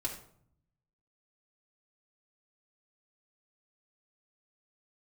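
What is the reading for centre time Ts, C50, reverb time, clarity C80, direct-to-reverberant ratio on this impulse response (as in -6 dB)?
21 ms, 7.0 dB, 0.60 s, 11.0 dB, -3.0 dB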